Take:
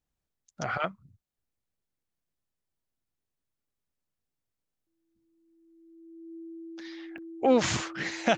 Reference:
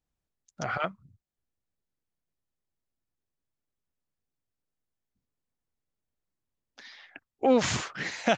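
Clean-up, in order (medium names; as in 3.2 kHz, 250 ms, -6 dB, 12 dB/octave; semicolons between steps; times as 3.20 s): band-stop 330 Hz, Q 30; interpolate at 7.18 s, 3.5 ms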